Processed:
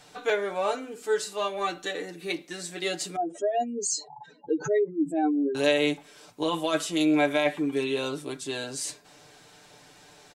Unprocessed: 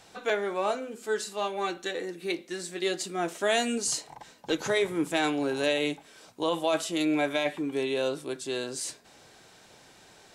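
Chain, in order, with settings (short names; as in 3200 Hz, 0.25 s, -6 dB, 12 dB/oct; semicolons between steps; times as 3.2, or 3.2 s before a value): 3.16–5.55 spectral contrast raised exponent 3.2; comb 6.8 ms, depth 65%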